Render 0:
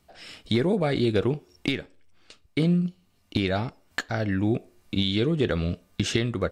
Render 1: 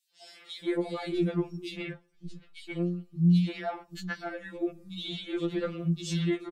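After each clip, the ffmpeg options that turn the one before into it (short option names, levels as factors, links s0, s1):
-filter_complex "[0:a]acrossover=split=240|2900[s0][s1][s2];[s1]adelay=130[s3];[s0]adelay=580[s4];[s4][s3][s2]amix=inputs=3:normalize=0,afftfilt=real='re*2.83*eq(mod(b,8),0)':imag='im*2.83*eq(mod(b,8),0)':win_size=2048:overlap=0.75,volume=0.668"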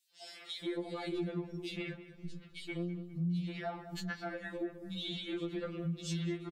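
-filter_complex "[0:a]acompressor=threshold=0.01:ratio=2.5,asplit=2[s0][s1];[s1]adelay=204,lowpass=f=2200:p=1,volume=0.237,asplit=2[s2][s3];[s3]adelay=204,lowpass=f=2200:p=1,volume=0.52,asplit=2[s4][s5];[s5]adelay=204,lowpass=f=2200:p=1,volume=0.52,asplit=2[s6][s7];[s7]adelay=204,lowpass=f=2200:p=1,volume=0.52,asplit=2[s8][s9];[s9]adelay=204,lowpass=f=2200:p=1,volume=0.52[s10];[s0][s2][s4][s6][s8][s10]amix=inputs=6:normalize=0,volume=1.12"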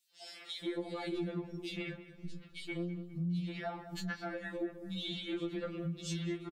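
-filter_complex "[0:a]asplit=2[s0][s1];[s1]adelay=21,volume=0.237[s2];[s0][s2]amix=inputs=2:normalize=0"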